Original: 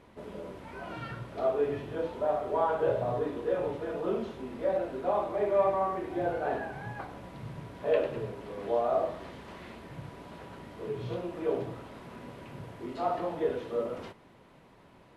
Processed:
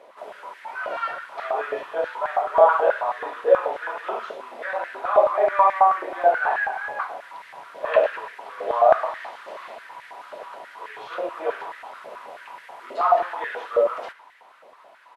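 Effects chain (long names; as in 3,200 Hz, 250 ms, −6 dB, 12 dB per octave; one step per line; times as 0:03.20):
dynamic equaliser 1,600 Hz, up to +5 dB, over −47 dBFS, Q 0.9
far-end echo of a speakerphone 110 ms, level −17 dB
high-pass on a step sequencer 9.3 Hz 580–1,800 Hz
level +4.5 dB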